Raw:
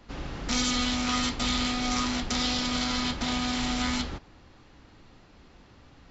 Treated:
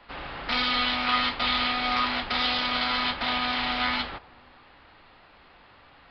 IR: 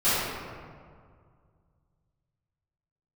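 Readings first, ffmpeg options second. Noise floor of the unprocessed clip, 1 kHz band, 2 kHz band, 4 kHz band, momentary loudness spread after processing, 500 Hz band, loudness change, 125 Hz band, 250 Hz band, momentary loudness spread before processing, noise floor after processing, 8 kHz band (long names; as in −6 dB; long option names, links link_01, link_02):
−55 dBFS, +6.0 dB, +6.5 dB, +3.0 dB, 6 LU, +1.5 dB, +2.5 dB, −8.0 dB, −6.0 dB, 6 LU, −55 dBFS, can't be measured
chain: -filter_complex "[0:a]aresample=11025,aresample=44100,acrossover=split=580 4100:gain=0.178 1 0.141[link_01][link_02][link_03];[link_01][link_02][link_03]amix=inputs=3:normalize=0,asplit=2[link_04][link_05];[1:a]atrim=start_sample=2205,lowpass=1000[link_06];[link_05][link_06]afir=irnorm=-1:irlink=0,volume=-35dB[link_07];[link_04][link_07]amix=inputs=2:normalize=0,volume=7dB"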